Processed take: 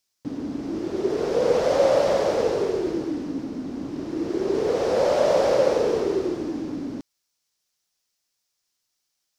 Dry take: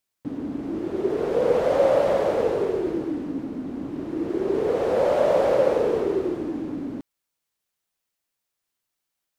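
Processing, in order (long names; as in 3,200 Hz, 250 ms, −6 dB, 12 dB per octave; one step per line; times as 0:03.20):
parametric band 5,400 Hz +12 dB 1 octave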